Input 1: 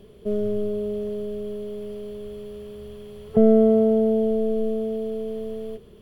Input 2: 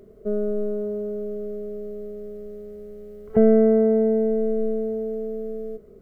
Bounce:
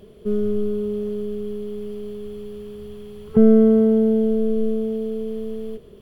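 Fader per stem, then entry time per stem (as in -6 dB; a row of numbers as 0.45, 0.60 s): +0.5, -2.0 dB; 0.00, 0.00 s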